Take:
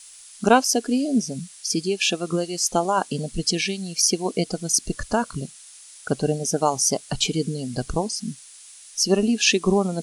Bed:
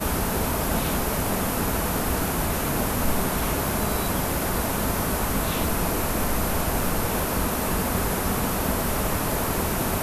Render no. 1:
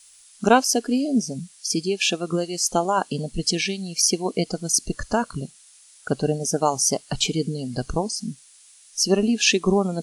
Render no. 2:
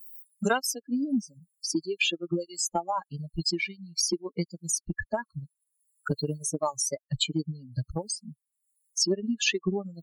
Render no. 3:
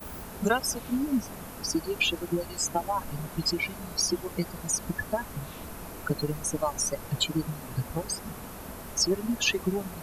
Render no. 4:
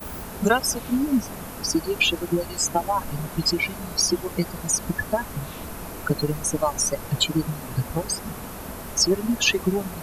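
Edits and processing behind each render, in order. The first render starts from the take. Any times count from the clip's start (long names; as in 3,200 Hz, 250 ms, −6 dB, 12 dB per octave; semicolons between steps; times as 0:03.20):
noise reduction from a noise print 6 dB
spectral dynamics exaggerated over time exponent 3; multiband upward and downward compressor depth 100%
mix in bed −16.5 dB
level +5.5 dB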